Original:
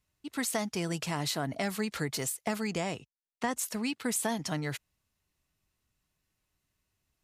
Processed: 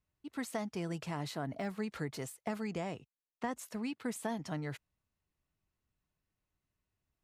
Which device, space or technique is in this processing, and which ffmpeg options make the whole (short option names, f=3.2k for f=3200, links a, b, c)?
through cloth: -filter_complex "[0:a]asettb=1/sr,asplit=3[a][b][c];[a]atrim=end=1.364[d];[b]atrim=start=1.36:end=1.78,asetpts=PTS-STARTPTS,afade=t=in:d=0.004:c=qsin,afade=t=out:st=0.416:d=0.004:c=qsin,deesser=1[e];[c]atrim=start=1.776[f];[d][e]acrossfade=d=0.004:c1=hsin:c2=qsin[g];[g][f]acrossfade=d=0.004:c1=qsin:c2=hsin,highshelf=f=2.7k:g=-11,volume=-4.5dB"